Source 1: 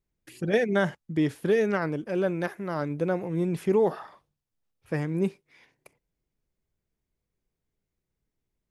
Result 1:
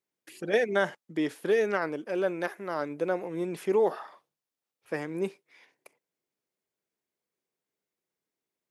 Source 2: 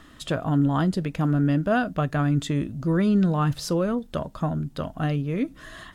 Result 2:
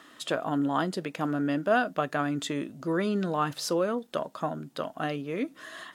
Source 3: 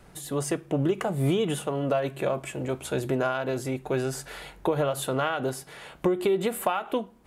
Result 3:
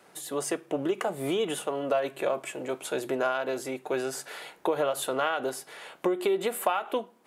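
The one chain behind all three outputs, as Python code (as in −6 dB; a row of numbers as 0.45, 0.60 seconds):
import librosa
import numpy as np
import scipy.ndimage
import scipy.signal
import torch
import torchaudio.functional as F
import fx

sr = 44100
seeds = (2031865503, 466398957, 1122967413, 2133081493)

y = scipy.signal.sosfilt(scipy.signal.butter(2, 340.0, 'highpass', fs=sr, output='sos'), x)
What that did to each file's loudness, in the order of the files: −2.5, −5.0, −2.0 LU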